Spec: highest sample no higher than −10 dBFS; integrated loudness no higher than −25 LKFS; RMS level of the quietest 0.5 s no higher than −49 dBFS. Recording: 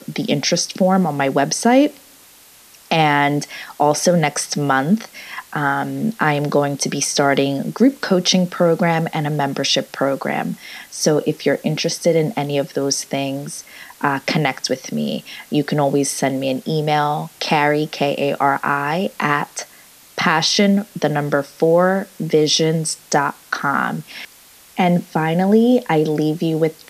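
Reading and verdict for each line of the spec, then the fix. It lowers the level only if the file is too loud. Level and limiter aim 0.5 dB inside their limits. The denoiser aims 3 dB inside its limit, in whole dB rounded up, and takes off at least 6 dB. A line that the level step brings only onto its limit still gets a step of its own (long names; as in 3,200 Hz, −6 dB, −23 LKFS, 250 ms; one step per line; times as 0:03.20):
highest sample −3.0 dBFS: out of spec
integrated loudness −18.0 LKFS: out of spec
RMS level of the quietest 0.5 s −46 dBFS: out of spec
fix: level −7.5 dB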